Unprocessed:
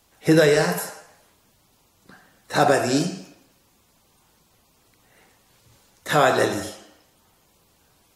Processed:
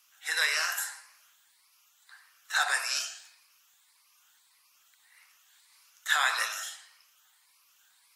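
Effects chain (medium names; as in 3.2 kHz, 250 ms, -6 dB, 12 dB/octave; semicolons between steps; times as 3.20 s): drifting ripple filter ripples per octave 0.91, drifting +1.7 Hz, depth 7 dB; high-pass 1.2 kHz 24 dB/octave; crackle 53 per s -60 dBFS; trim -2 dB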